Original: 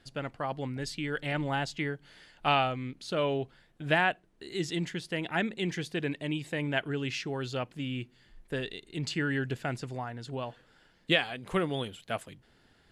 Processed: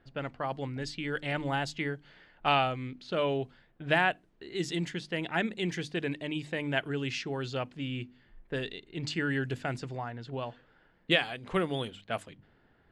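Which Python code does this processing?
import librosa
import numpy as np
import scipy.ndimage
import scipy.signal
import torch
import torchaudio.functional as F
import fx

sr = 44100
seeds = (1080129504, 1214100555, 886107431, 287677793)

y = fx.hum_notches(x, sr, base_hz=50, count=6)
y = fx.env_lowpass(y, sr, base_hz=1700.0, full_db=-28.0)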